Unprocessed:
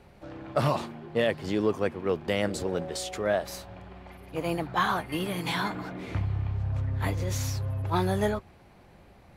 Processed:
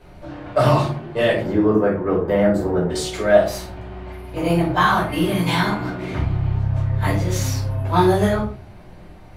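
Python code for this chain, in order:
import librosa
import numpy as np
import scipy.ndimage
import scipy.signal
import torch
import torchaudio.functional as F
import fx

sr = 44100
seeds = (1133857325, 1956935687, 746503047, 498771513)

y = fx.band_shelf(x, sr, hz=5100.0, db=-15.0, octaves=2.5, at=(1.41, 2.9))
y = fx.room_shoebox(y, sr, seeds[0], volume_m3=290.0, walls='furnished', distance_m=5.2)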